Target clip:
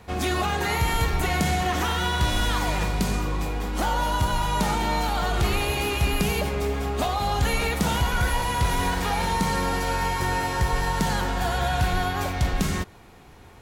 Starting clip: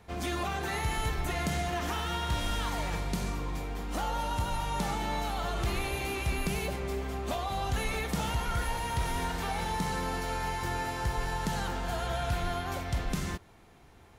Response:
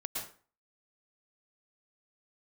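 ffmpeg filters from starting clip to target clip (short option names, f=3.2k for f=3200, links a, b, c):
-af "asetrate=45938,aresample=44100,volume=8dB"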